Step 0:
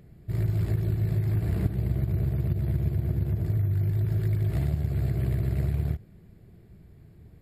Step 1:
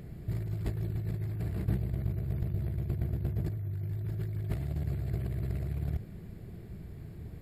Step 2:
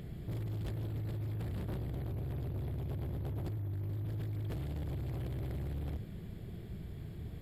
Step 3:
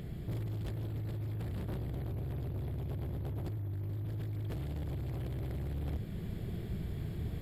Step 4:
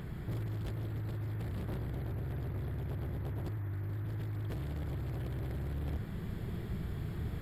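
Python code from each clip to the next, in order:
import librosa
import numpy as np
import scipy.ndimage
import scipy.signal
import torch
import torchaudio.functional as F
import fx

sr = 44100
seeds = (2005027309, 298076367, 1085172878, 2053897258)

y1 = fx.over_compress(x, sr, threshold_db=-33.0, ratio=-1.0)
y2 = fx.peak_eq(y1, sr, hz=3300.0, db=9.5, octaves=0.32)
y2 = np.clip(y2, -10.0 ** (-35.5 / 20.0), 10.0 ** (-35.5 / 20.0))
y3 = fx.rider(y2, sr, range_db=5, speed_s=0.5)
y3 = y3 * librosa.db_to_amplitude(1.0)
y4 = fx.dmg_noise_band(y3, sr, seeds[0], low_hz=690.0, high_hz=2000.0, level_db=-60.0)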